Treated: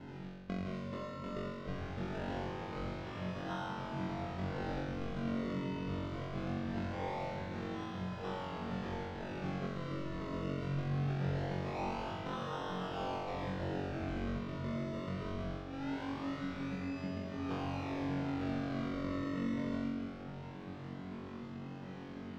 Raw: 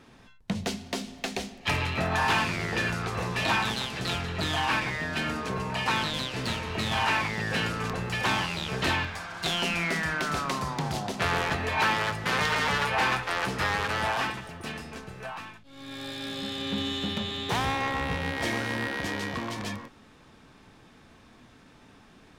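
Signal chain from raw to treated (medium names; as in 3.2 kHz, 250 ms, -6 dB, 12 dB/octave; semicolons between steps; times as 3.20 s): Chebyshev band-pass 140–2400 Hz, order 2; tilt EQ -2.5 dB/octave; compression 12:1, threshold -41 dBFS, peak gain reduction 22 dB; decimation with a swept rate 37×, swing 100% 0.22 Hz; distance through air 200 m; flutter echo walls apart 3.7 m, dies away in 1.3 s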